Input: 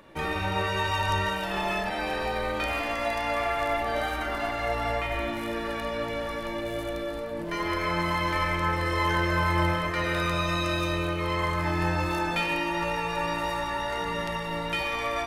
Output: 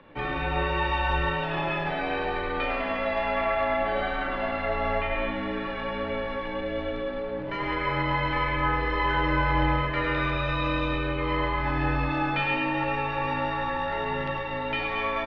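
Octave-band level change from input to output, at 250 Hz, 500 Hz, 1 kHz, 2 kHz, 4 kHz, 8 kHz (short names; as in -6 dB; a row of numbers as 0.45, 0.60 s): +1.0 dB, +1.0 dB, +1.0 dB, +0.5 dB, -2.5 dB, under -20 dB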